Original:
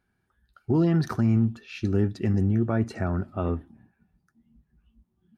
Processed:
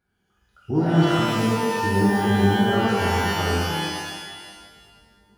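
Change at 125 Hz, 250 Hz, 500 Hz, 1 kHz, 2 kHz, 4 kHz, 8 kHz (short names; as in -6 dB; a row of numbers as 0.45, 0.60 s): +1.5 dB, +3.5 dB, +7.5 dB, +15.5 dB, +16.0 dB, +20.0 dB, n/a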